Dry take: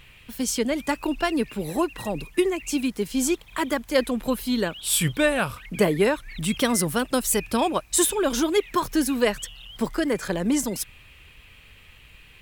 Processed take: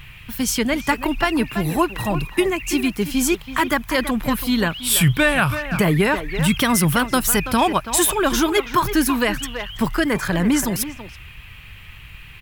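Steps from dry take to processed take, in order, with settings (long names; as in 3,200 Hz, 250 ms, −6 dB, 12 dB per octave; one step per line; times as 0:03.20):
octave-band graphic EQ 125/250/500/4,000/8,000 Hz +5/−5/−10/−4/−7 dB
far-end echo of a speakerphone 330 ms, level −10 dB
boost into a limiter +16 dB
level −5.5 dB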